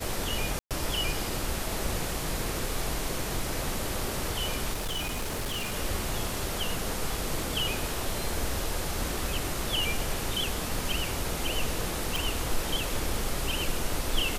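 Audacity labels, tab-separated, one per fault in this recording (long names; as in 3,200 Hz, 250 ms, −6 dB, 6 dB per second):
0.590000	0.710000	drop-out 117 ms
4.730000	5.740000	clipping −28 dBFS
12.160000	12.160000	click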